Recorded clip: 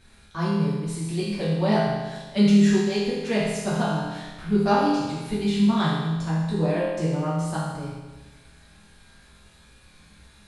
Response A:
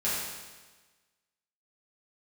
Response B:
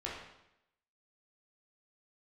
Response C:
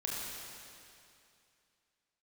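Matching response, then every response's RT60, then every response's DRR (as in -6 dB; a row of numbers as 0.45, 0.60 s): A; 1.3, 0.85, 2.6 s; -10.0, -5.5, -5.0 dB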